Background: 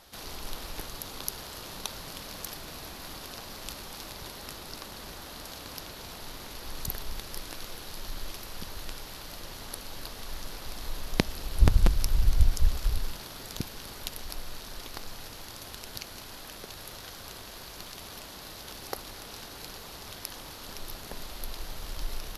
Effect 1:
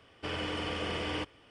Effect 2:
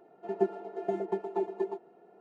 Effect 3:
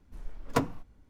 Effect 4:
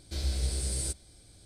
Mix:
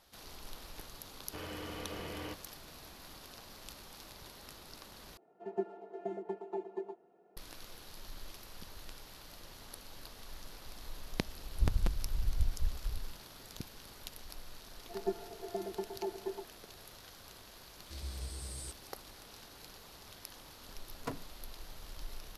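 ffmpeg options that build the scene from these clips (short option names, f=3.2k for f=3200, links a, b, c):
-filter_complex "[2:a]asplit=2[a][b];[0:a]volume=-10dB[c];[1:a]aemphasis=mode=reproduction:type=75kf[d];[c]asplit=2[e][f];[e]atrim=end=5.174[g];[a]atrim=end=2.2,asetpts=PTS-STARTPTS,volume=-8dB[h];[f]atrim=start=7.366[i];[d]atrim=end=1.5,asetpts=PTS-STARTPTS,volume=-7.5dB,afade=t=in:d=0.004:c=hsin,afade=t=out:st=1.496:d=0.004:c=hsin,adelay=1100[j];[b]atrim=end=2.2,asetpts=PTS-STARTPTS,volume=-7.5dB,afade=t=in:d=0.004:c=hsin,afade=t=out:st=2.196:d=0.004:c=hsin,adelay=14660[k];[4:a]atrim=end=1.45,asetpts=PTS-STARTPTS,volume=-12dB,afade=t=in:d=0.004:c=hsin,afade=t=out:st=1.446:d=0.004:c=hsin,adelay=17790[l];[3:a]atrim=end=1.09,asetpts=PTS-STARTPTS,volume=-13.5dB,afade=t=in:d=0.004:c=hsin,afade=t=out:st=1.086:d=0.004:c=hsin,adelay=20510[m];[g][h]acrossfade=d=0.004:c1=hsin:c2=hsin[n];[n][i]acrossfade=d=0.004:c1=hsin:c2=hsin[o];[o][j][k][l][m]amix=inputs=5:normalize=0"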